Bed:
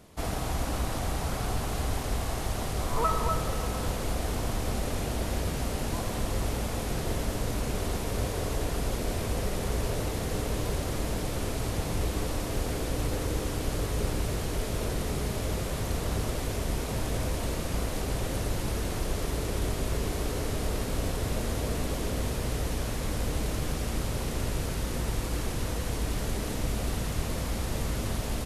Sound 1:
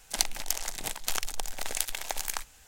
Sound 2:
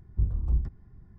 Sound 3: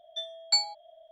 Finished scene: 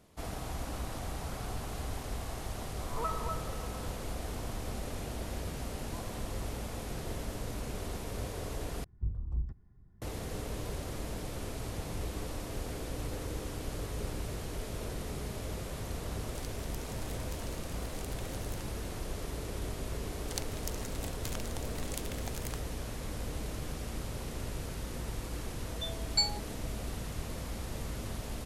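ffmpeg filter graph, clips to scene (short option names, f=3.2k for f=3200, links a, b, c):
-filter_complex "[1:a]asplit=2[a][b];[0:a]volume=-8dB[c];[a]acompressor=threshold=-36dB:ratio=6:attack=3.2:release=140:knee=1:detection=peak[d];[c]asplit=2[e][f];[e]atrim=end=8.844[g];[2:a]atrim=end=1.18,asetpts=PTS-STARTPTS,volume=-8.5dB[h];[f]atrim=start=10.016[i];[d]atrim=end=2.67,asetpts=PTS-STARTPTS,volume=-9.5dB,afade=t=in:d=0.004:c=hsin,afade=t=out:st=2.666:d=0.004:c=hsin,adelay=16240[j];[b]atrim=end=2.67,asetpts=PTS-STARTPTS,volume=-12dB,afade=t=in:d=0.004:c=hsin,afade=t=out:st=2.666:d=0.004:c=hsin,adelay=20170[k];[3:a]atrim=end=1.11,asetpts=PTS-STARTPTS,volume=-4dB,afade=t=in:d=0.004:c=hsin,afade=t=out:st=1.106:d=0.004:c=hsin,adelay=25650[l];[g][h]acrossfade=d=0.004:c1=hsin:c2=hsin[m];[m][i]acrossfade=d=0.004:c1=hsin:c2=hsin[n];[n][j][k][l]amix=inputs=4:normalize=0"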